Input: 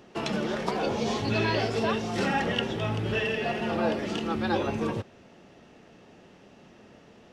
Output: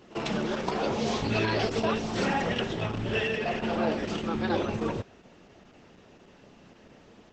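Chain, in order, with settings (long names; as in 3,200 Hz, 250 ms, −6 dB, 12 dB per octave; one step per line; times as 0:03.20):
backwards echo 49 ms −19 dB
Opus 10 kbit/s 48,000 Hz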